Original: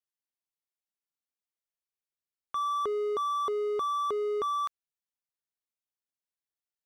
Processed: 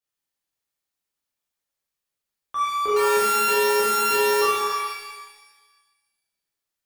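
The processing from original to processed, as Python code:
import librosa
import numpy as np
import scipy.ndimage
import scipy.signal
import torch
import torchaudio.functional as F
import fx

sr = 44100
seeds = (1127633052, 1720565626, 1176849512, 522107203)

y = fx.sample_sort(x, sr, block=32, at=(2.96, 4.41))
y = fx.rev_shimmer(y, sr, seeds[0], rt60_s=1.3, semitones=12, shimmer_db=-8, drr_db=-8.5)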